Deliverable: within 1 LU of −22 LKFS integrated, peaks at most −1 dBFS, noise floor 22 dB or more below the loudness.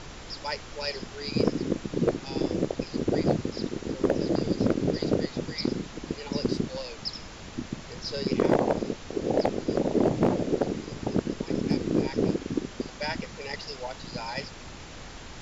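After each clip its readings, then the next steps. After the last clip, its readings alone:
share of clipped samples 0.3%; peaks flattened at −14.5 dBFS; background noise floor −43 dBFS; target noise floor −51 dBFS; integrated loudness −29.0 LKFS; sample peak −14.5 dBFS; target loudness −22.0 LKFS
→ clipped peaks rebuilt −14.5 dBFS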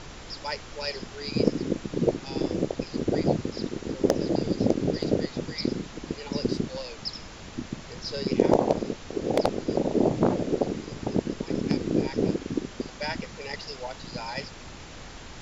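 share of clipped samples 0.0%; background noise floor −43 dBFS; target noise floor −51 dBFS
→ noise reduction from a noise print 8 dB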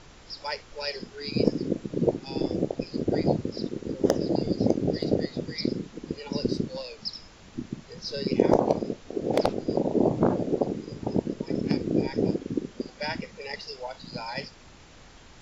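background noise floor −50 dBFS; target noise floor −51 dBFS
→ noise reduction from a noise print 6 dB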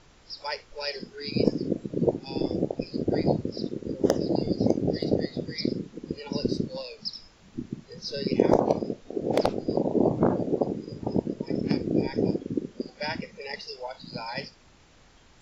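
background noise floor −56 dBFS; integrated loudness −28.5 LKFS; sample peak −5.5 dBFS; target loudness −22.0 LKFS
→ level +6.5 dB
brickwall limiter −1 dBFS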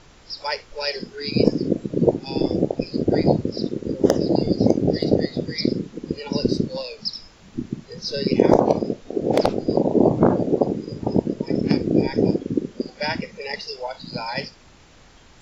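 integrated loudness −22.5 LKFS; sample peak −1.0 dBFS; background noise floor −50 dBFS

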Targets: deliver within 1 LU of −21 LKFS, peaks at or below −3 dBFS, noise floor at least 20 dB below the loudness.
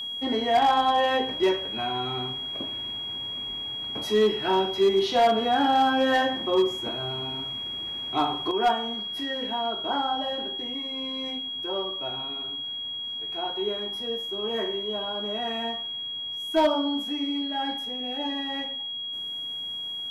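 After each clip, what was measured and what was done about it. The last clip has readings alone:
share of clipped samples 0.5%; peaks flattened at −15.0 dBFS; interfering tone 3,300 Hz; level of the tone −31 dBFS; integrated loudness −26.5 LKFS; sample peak −15.0 dBFS; target loudness −21.0 LKFS
→ clipped peaks rebuilt −15 dBFS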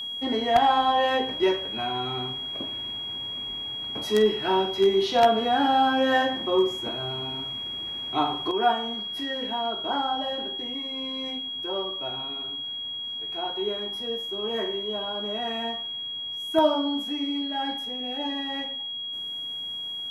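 share of clipped samples 0.0%; interfering tone 3,300 Hz; level of the tone −31 dBFS
→ notch filter 3,300 Hz, Q 30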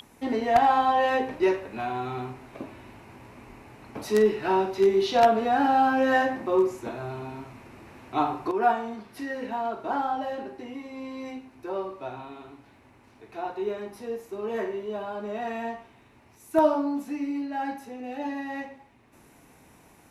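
interfering tone none found; integrated loudness −26.5 LKFS; sample peak −5.5 dBFS; target loudness −21.0 LKFS
→ level +5.5 dB
brickwall limiter −3 dBFS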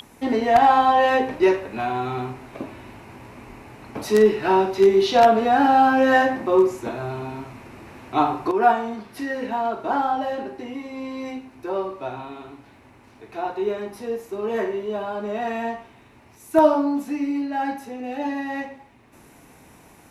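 integrated loudness −21.5 LKFS; sample peak −3.0 dBFS; background noise floor −51 dBFS

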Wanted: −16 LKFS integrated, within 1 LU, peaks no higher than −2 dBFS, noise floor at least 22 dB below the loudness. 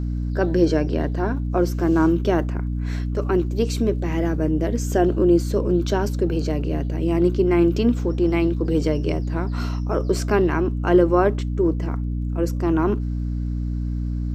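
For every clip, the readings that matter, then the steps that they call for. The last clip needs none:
crackle rate 31 per second; mains hum 60 Hz; hum harmonics up to 300 Hz; level of the hum −22 dBFS; integrated loudness −21.5 LKFS; sample peak −4.5 dBFS; target loudness −16.0 LKFS
→ click removal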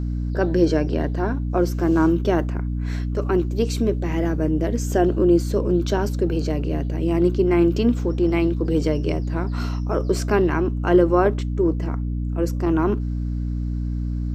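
crackle rate 0.14 per second; mains hum 60 Hz; hum harmonics up to 300 Hz; level of the hum −22 dBFS
→ hum removal 60 Hz, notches 5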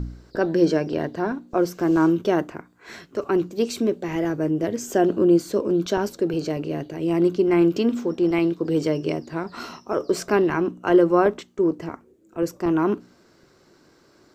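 mains hum none found; integrated loudness −22.5 LKFS; sample peak −5.5 dBFS; target loudness −16.0 LKFS
→ level +6.5 dB
brickwall limiter −2 dBFS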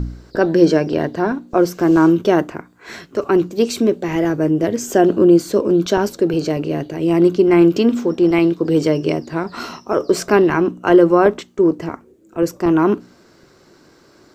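integrated loudness −16.0 LKFS; sample peak −2.0 dBFS; background noise floor −51 dBFS

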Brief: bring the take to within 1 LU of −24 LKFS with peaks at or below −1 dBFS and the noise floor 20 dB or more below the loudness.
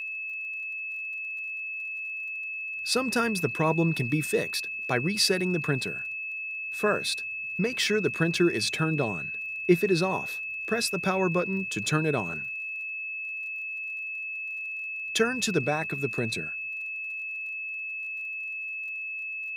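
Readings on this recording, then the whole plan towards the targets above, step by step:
crackle rate 36 per second; interfering tone 2,600 Hz; level of the tone −32 dBFS; integrated loudness −28.5 LKFS; sample peak −8.0 dBFS; target loudness −24.0 LKFS
→ click removal
notch filter 2,600 Hz, Q 30
level +4.5 dB

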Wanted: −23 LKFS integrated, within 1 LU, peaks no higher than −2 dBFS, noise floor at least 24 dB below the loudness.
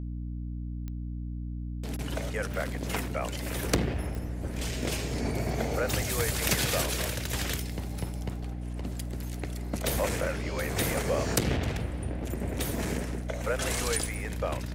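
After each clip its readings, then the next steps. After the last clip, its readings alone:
number of clicks 4; mains hum 60 Hz; hum harmonics up to 300 Hz; level of the hum −33 dBFS; integrated loudness −31.5 LKFS; sample peak −12.5 dBFS; target loudness −23.0 LKFS
→ click removal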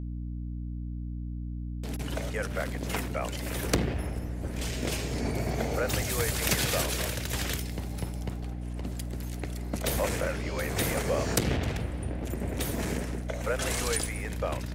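number of clicks 0; mains hum 60 Hz; hum harmonics up to 300 Hz; level of the hum −33 dBFS
→ hum removal 60 Hz, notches 5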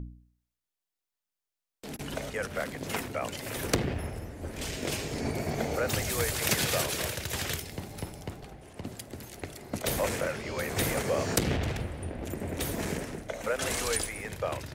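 mains hum none found; integrated loudness −32.0 LKFS; sample peak −12.5 dBFS; target loudness −23.0 LKFS
→ level +9 dB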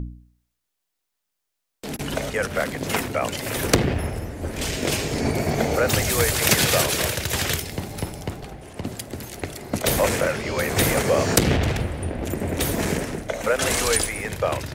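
integrated loudness −23.0 LKFS; sample peak −3.5 dBFS; background noise floor −79 dBFS

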